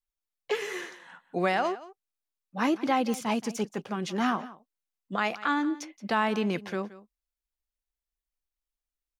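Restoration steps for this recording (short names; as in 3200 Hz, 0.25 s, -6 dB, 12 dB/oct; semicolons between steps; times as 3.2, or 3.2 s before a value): de-click; inverse comb 0.174 s -17.5 dB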